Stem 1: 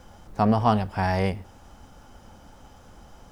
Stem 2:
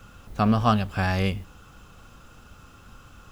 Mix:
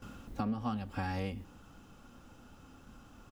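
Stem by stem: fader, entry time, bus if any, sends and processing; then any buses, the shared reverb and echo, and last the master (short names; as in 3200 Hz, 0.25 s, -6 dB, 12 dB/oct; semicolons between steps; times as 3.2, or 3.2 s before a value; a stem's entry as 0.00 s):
-12.5 dB, 0.00 s, no send, dry
-0.5 dB, 3.3 ms, no send, gate with hold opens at -40 dBFS; bell 260 Hz +11.5 dB 0.97 oct; auto duck -10 dB, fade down 0.45 s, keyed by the first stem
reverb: off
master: compressor 6:1, threshold -32 dBFS, peak gain reduction 13 dB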